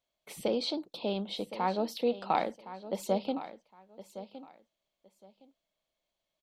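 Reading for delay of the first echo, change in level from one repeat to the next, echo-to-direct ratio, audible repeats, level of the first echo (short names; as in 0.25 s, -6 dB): 1.064 s, -13.5 dB, -14.0 dB, 2, -14.0 dB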